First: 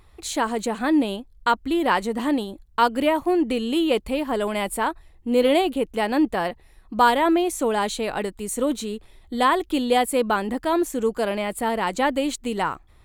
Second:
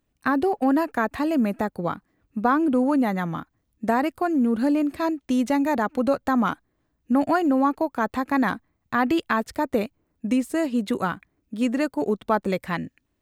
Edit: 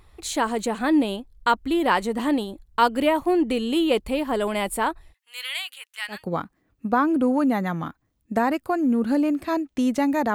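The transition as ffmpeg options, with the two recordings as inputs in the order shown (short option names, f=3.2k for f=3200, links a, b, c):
-filter_complex "[0:a]asplit=3[a][b][c];[a]afade=t=out:st=5.12:d=0.02[d];[b]highpass=f=1.5k:w=0.5412,highpass=f=1.5k:w=1.3066,afade=t=in:st=5.12:d=0.02,afade=t=out:st=6.26:d=0.02[e];[c]afade=t=in:st=6.26:d=0.02[f];[d][e][f]amix=inputs=3:normalize=0,apad=whole_dur=10.34,atrim=end=10.34,atrim=end=6.26,asetpts=PTS-STARTPTS[g];[1:a]atrim=start=1.6:end=5.86,asetpts=PTS-STARTPTS[h];[g][h]acrossfade=d=0.18:c1=tri:c2=tri"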